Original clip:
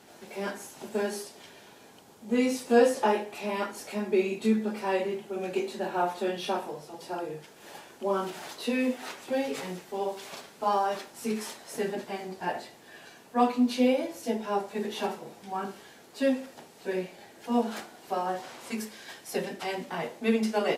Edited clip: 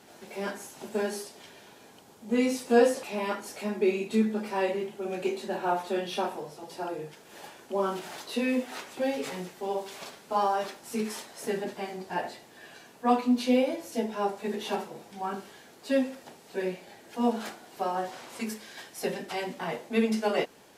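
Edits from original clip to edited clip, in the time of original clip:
0:03.03–0:03.34: remove

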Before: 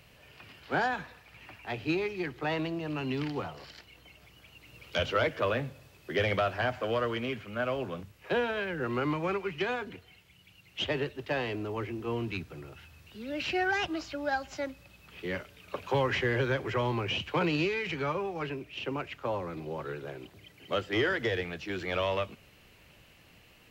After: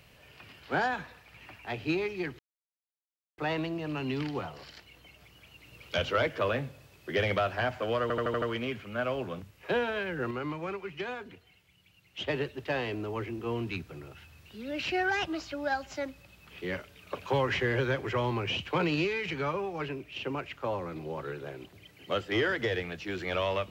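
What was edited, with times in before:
0:02.39: splice in silence 0.99 s
0:07.03: stutter 0.08 s, 6 plays
0:08.92–0:10.89: clip gain −5 dB

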